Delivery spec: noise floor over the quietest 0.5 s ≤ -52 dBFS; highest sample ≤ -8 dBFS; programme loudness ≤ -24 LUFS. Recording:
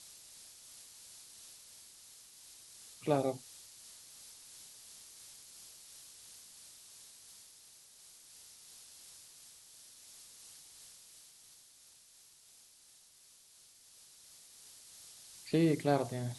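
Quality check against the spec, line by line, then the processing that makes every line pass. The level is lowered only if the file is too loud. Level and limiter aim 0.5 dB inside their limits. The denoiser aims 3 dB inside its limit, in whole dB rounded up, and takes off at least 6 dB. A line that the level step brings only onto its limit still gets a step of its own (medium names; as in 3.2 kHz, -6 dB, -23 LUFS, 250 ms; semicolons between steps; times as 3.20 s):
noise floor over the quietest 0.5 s -62 dBFS: pass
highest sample -16.5 dBFS: pass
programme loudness -40.5 LUFS: pass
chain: none needed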